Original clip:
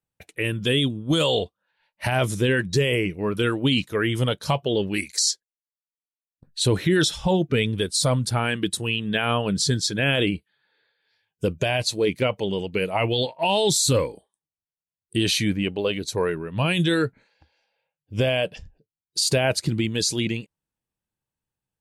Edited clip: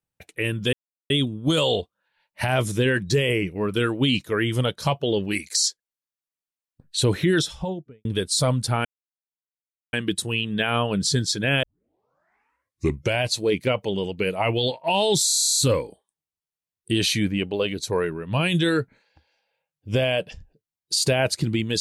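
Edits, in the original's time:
0.73 s: insert silence 0.37 s
6.86–7.68 s: studio fade out
8.48 s: insert silence 1.08 s
10.18 s: tape start 1.59 s
13.82 s: stutter 0.03 s, 11 plays

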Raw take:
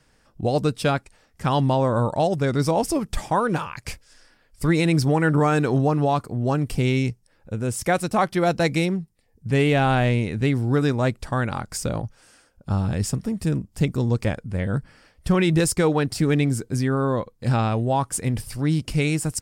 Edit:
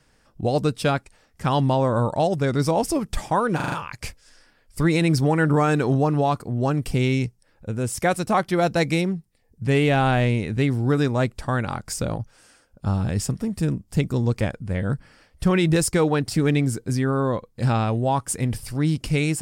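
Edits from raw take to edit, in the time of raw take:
3.56 s: stutter 0.04 s, 5 plays

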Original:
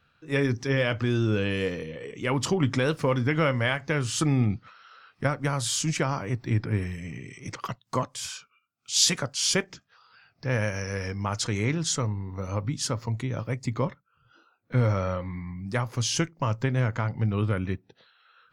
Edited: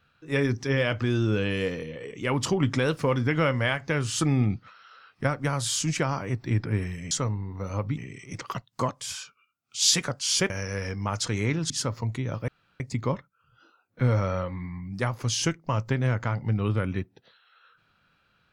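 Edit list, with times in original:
9.64–10.69 s: delete
11.89–12.75 s: move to 7.11 s
13.53 s: insert room tone 0.32 s

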